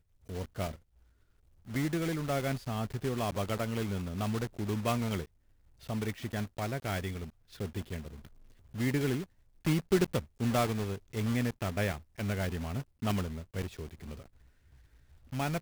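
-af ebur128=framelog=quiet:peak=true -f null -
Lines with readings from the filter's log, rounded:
Integrated loudness:
  I:         -34.3 LUFS
  Threshold: -45.1 LUFS
Loudness range:
  LRA:         6.0 LU
  Threshold: -54.7 LUFS
  LRA low:   -38.2 LUFS
  LRA high:  -32.1 LUFS
True peak:
  Peak:      -14.2 dBFS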